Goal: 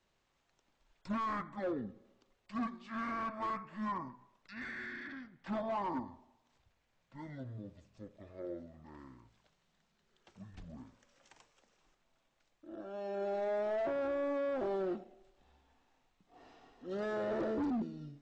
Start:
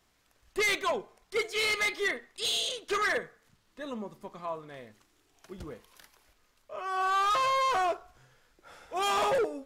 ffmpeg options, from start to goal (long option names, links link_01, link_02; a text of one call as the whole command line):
ffmpeg -i in.wav -filter_complex "[0:a]acrossover=split=780|3100[link_01][link_02][link_03];[link_03]acompressor=threshold=-50dB:ratio=6[link_04];[link_01][link_02][link_04]amix=inputs=3:normalize=0,asetrate=23373,aresample=44100,volume=-8dB" out.wav